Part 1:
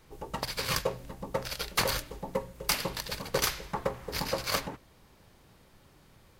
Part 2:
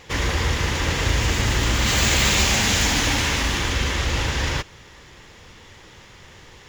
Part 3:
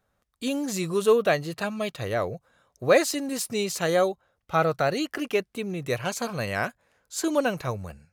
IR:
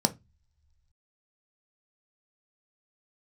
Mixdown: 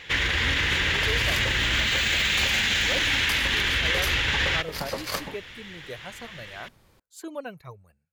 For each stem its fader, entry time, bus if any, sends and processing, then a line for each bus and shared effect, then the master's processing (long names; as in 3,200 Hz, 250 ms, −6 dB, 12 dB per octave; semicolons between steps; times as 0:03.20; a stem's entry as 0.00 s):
−0.5 dB, 0.60 s, no send, no processing
−5.0 dB, 0.00 s, no send, flat-topped bell 2,400 Hz +11.5 dB
−11.0 dB, 0.00 s, no send, reverb reduction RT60 1.6 s; parametric band 5,700 Hz −6 dB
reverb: not used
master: brickwall limiter −14.5 dBFS, peak gain reduction 10.5 dB